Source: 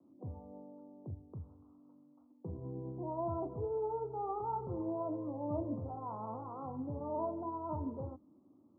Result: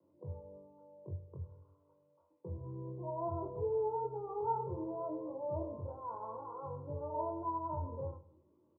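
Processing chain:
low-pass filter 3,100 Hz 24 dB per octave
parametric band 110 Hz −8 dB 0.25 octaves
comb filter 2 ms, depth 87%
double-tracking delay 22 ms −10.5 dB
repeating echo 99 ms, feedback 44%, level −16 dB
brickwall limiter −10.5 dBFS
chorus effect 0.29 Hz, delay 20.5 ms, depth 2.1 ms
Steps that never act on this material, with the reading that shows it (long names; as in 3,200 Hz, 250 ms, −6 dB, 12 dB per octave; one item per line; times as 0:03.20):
low-pass filter 3,100 Hz: nothing at its input above 1,400 Hz
brickwall limiter −10.5 dBFS: peak of its input −22.0 dBFS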